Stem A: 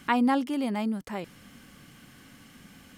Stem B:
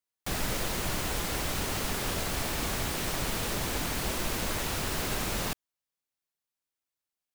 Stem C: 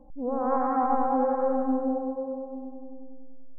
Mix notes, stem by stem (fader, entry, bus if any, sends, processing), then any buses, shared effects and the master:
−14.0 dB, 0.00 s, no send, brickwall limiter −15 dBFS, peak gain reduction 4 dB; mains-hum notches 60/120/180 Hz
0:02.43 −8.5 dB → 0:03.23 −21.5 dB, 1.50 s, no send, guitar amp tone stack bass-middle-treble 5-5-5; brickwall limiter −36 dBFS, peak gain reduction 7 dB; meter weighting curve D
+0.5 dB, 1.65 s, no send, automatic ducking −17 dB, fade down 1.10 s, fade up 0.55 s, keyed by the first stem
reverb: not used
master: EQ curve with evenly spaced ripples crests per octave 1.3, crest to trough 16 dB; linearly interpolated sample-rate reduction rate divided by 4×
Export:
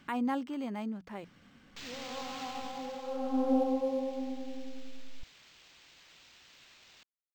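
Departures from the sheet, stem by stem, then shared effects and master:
stem A −14.0 dB → −8.0 dB
stem B: missing brickwall limiter −36 dBFS, peak gain reduction 7 dB
master: missing EQ curve with evenly spaced ripples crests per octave 1.3, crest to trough 16 dB

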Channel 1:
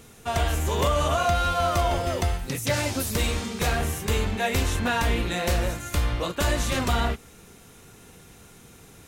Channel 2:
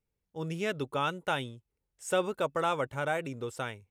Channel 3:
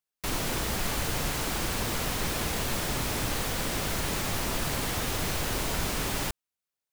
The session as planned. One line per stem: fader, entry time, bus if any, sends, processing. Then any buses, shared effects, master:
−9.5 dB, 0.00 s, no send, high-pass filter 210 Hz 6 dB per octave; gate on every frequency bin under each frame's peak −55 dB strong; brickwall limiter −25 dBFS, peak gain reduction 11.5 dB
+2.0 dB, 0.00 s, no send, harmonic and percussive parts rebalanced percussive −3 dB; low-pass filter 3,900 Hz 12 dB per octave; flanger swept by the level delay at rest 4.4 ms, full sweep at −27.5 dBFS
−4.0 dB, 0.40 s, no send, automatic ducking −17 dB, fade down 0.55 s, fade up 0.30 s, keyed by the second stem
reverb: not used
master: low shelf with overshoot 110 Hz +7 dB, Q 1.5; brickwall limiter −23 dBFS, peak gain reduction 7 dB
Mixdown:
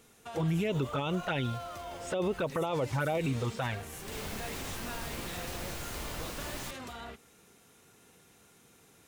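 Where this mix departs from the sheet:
stem 2 +2.0 dB → +12.5 dB
stem 3 −4.0 dB → −10.5 dB
master: missing low shelf with overshoot 110 Hz +7 dB, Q 1.5

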